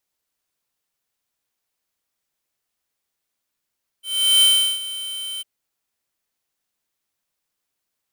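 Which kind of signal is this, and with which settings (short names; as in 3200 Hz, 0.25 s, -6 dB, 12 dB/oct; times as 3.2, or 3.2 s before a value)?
ADSR square 3090 Hz, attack 0.387 s, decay 0.37 s, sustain -16.5 dB, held 1.38 s, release 22 ms -13 dBFS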